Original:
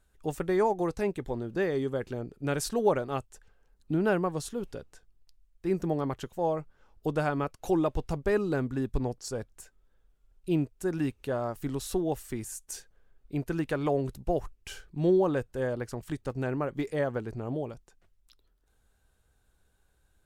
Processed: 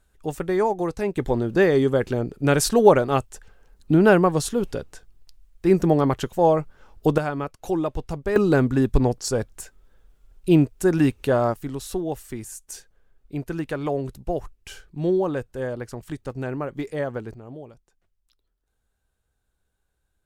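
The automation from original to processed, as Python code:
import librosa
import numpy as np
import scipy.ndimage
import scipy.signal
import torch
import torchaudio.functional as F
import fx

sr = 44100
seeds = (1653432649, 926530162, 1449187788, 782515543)

y = fx.gain(x, sr, db=fx.steps((0.0, 4.0), (1.17, 11.0), (7.18, 2.0), (8.36, 11.0), (11.54, 2.0), (17.34, -6.0)))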